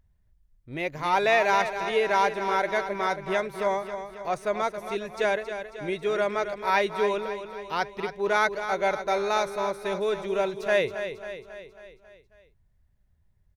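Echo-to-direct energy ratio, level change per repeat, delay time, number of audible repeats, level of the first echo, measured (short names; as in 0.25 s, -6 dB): -8.0 dB, -5.0 dB, 0.272 s, 5, -9.5 dB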